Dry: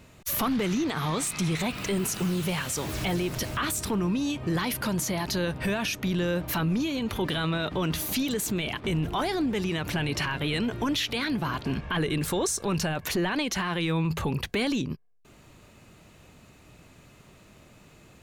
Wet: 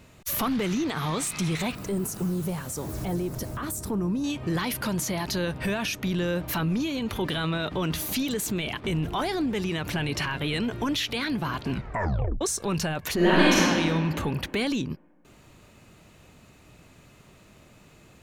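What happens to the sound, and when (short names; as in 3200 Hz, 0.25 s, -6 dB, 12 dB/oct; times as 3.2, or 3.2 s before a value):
1.75–4.24 bell 2800 Hz -15 dB 1.9 oct
11.71 tape stop 0.70 s
13.15–13.57 reverb throw, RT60 2.2 s, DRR -9 dB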